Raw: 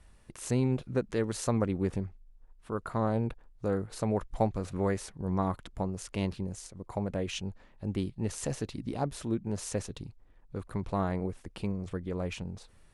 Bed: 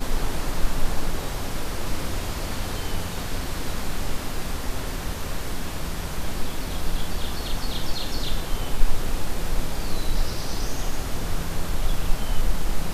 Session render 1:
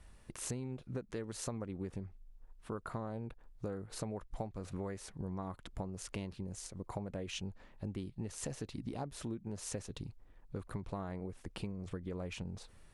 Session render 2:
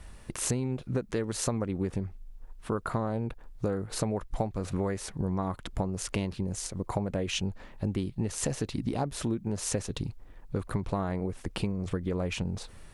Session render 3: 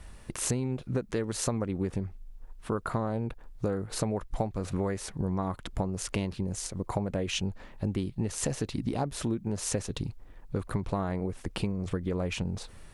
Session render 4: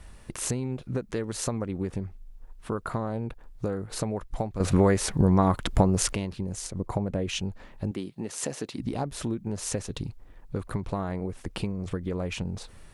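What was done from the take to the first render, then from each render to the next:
compression 10:1, threshold -37 dBFS, peak gain reduction 16 dB
trim +10.5 dB
no audible change
4.60–6.13 s: gain +10 dB; 6.71–7.29 s: tilt shelf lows +3 dB, about 800 Hz; 7.91–8.80 s: high-pass 210 Hz

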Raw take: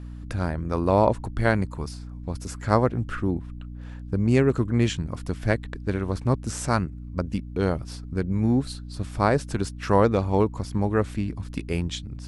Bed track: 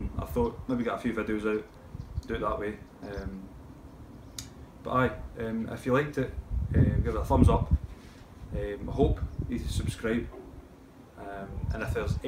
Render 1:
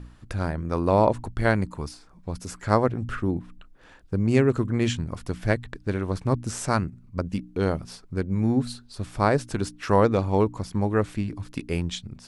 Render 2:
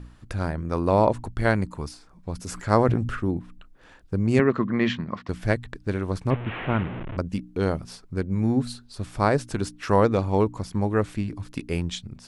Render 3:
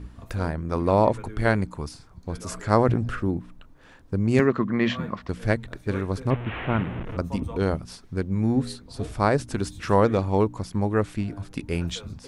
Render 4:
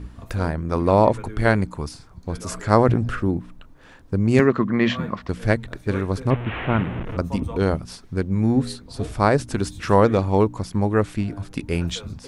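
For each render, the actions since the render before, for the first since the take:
de-hum 60 Hz, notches 5
2.36–3.17 s: decay stretcher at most 45 dB/s; 4.39–5.29 s: cabinet simulation 170–4500 Hz, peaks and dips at 200 Hz +9 dB, 620 Hz +3 dB, 1.1 kHz +9 dB, 1.9 kHz +9 dB; 6.30–7.17 s: one-bit delta coder 16 kbps, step -27 dBFS
add bed track -12 dB
trim +3.5 dB

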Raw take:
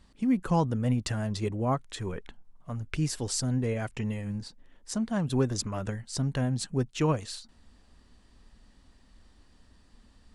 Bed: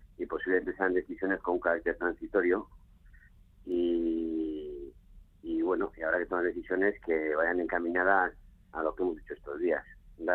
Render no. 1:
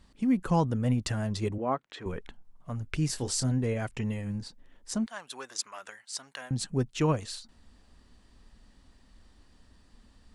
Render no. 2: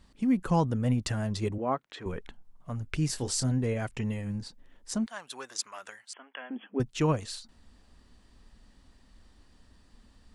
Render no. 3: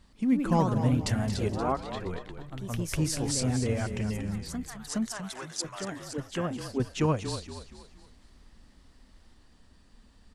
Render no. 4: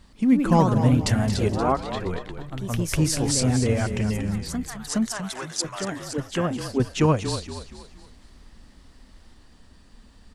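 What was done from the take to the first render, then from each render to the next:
1.58–2.06 s: band-pass 270–3300 Hz; 3.07–3.52 s: doubling 23 ms -8.5 dB; 5.06–6.51 s: high-pass 1.1 kHz
6.13–6.80 s: brick-wall FIR band-pass 210–3400 Hz
frequency-shifting echo 235 ms, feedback 41%, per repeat -31 Hz, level -10 dB; ever faster or slower copies 124 ms, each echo +2 st, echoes 2, each echo -6 dB
trim +6.5 dB

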